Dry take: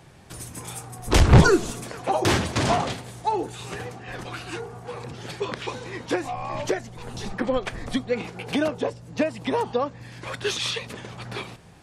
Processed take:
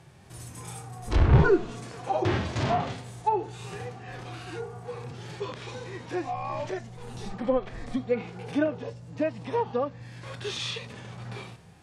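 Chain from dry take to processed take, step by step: harmonic-percussive split percussive -17 dB; low-pass that closes with the level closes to 2.5 kHz, closed at -20 dBFS

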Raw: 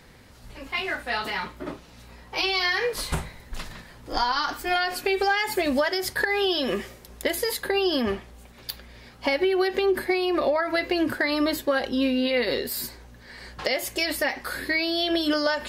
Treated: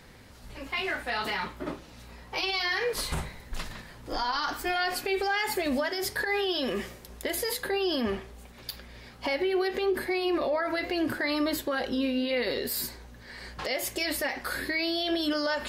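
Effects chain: peak limiter -20 dBFS, peak gain reduction 9.5 dB; flange 0.79 Hz, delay 8.9 ms, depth 5.5 ms, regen -86%; trim +4 dB

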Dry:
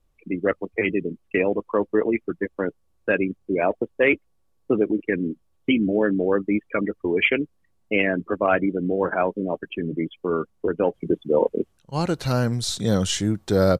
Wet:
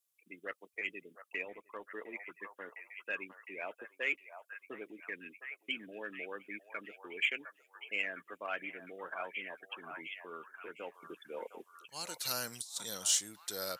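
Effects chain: differentiator; in parallel at -11 dB: saturation -26.5 dBFS, distortion -13 dB; on the sum: treble shelf 7.4 kHz +5 dB; on a send: repeats whose band climbs or falls 708 ms, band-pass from 940 Hz, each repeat 0.7 oct, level -5 dB; 1.45–1.87 s: on the sum: AM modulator 190 Hz, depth 20%; 12.25–12.83 s: compressor with a negative ratio -34 dBFS, ratio -0.5; trim -3.5 dB

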